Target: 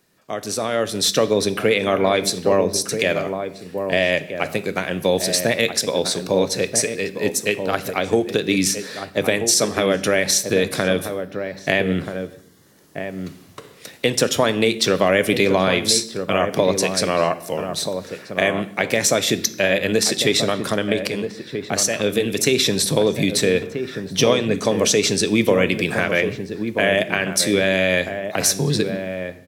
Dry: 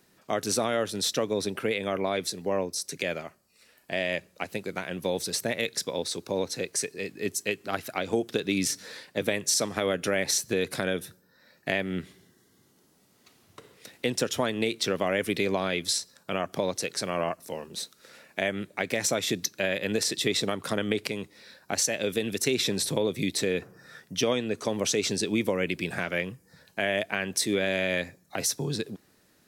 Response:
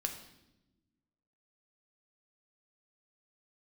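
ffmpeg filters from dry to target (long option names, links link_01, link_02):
-filter_complex "[0:a]dynaudnorm=framelen=550:gausssize=3:maxgain=11.5dB,asplit=2[link_01][link_02];[link_02]adelay=1283,volume=-7dB,highshelf=frequency=4000:gain=-28.9[link_03];[link_01][link_03]amix=inputs=2:normalize=0,asplit=2[link_04][link_05];[1:a]atrim=start_sample=2205,afade=type=out:start_time=0.31:duration=0.01,atrim=end_sample=14112[link_06];[link_05][link_06]afir=irnorm=-1:irlink=0,volume=-4.5dB[link_07];[link_04][link_07]amix=inputs=2:normalize=0,volume=-4dB"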